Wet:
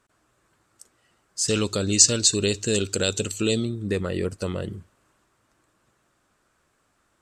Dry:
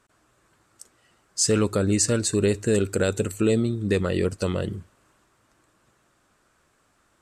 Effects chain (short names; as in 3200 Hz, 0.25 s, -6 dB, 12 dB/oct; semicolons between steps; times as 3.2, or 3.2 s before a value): 1.48–3.65 band shelf 4500 Hz +13.5 dB; gain -3 dB